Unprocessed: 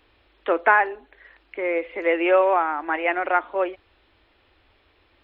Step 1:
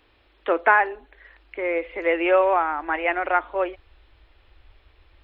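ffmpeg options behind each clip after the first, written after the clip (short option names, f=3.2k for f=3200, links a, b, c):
-af "asubboost=boost=7.5:cutoff=67"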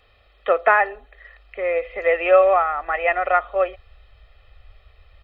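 -af "aecho=1:1:1.6:0.9"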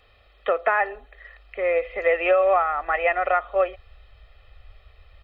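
-af "alimiter=limit=-10dB:level=0:latency=1:release=225"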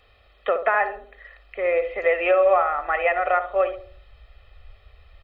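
-filter_complex "[0:a]asplit=2[a][b];[b]adelay=67,lowpass=f=980:p=1,volume=-8dB,asplit=2[c][d];[d]adelay=67,lowpass=f=980:p=1,volume=0.48,asplit=2[e][f];[f]adelay=67,lowpass=f=980:p=1,volume=0.48,asplit=2[g][h];[h]adelay=67,lowpass=f=980:p=1,volume=0.48,asplit=2[i][j];[j]adelay=67,lowpass=f=980:p=1,volume=0.48,asplit=2[k][l];[l]adelay=67,lowpass=f=980:p=1,volume=0.48[m];[a][c][e][g][i][k][m]amix=inputs=7:normalize=0"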